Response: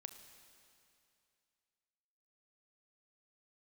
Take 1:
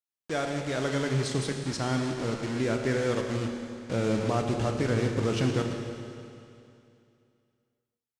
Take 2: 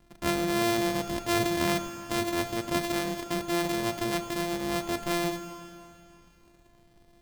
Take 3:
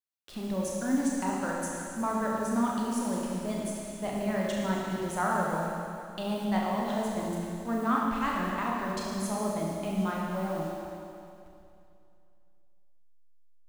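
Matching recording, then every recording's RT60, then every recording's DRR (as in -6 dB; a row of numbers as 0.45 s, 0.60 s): 2; 2.6 s, 2.6 s, 2.6 s; 3.0 dB, 8.0 dB, -3.5 dB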